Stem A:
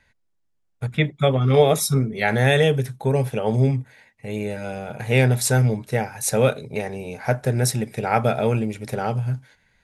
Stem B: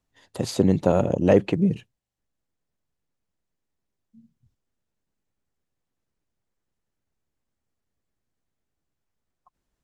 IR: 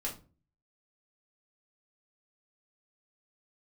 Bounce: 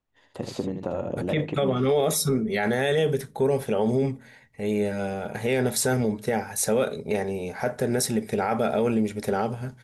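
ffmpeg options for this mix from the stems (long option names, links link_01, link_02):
-filter_complex "[0:a]equalizer=frequency=125:width_type=o:width=0.33:gain=-12,equalizer=frequency=200:width_type=o:width=0.33:gain=4,equalizer=frequency=400:width_type=o:width=0.33:gain=5,equalizer=frequency=2500:width_type=o:width=0.33:gain=-4,adelay=350,volume=-0.5dB,asplit=2[link_01][link_02];[link_02]volume=-17dB[link_03];[1:a]acompressor=threshold=-22dB:ratio=6,bass=frequency=250:gain=-3,treble=frequency=4000:gain=-9,volume=-4dB,asplit=3[link_04][link_05][link_06];[link_05]volume=-11.5dB[link_07];[link_06]volume=-4.5dB[link_08];[2:a]atrim=start_sample=2205[link_09];[link_03][link_07]amix=inputs=2:normalize=0[link_10];[link_10][link_09]afir=irnorm=-1:irlink=0[link_11];[link_08]aecho=0:1:78:1[link_12];[link_01][link_04][link_11][link_12]amix=inputs=4:normalize=0,alimiter=limit=-14.5dB:level=0:latency=1:release=31"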